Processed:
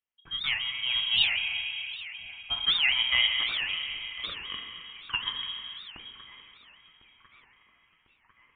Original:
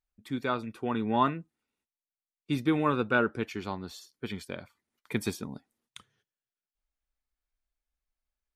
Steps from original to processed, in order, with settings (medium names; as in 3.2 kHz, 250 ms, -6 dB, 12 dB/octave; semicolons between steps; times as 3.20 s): elliptic high-pass 220 Hz; feedback echo behind a high-pass 1049 ms, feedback 60%, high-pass 1.4 kHz, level -15.5 dB; plate-style reverb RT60 3.8 s, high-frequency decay 0.55×, DRR 1.5 dB; frequency inversion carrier 3.5 kHz; warped record 78 rpm, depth 250 cents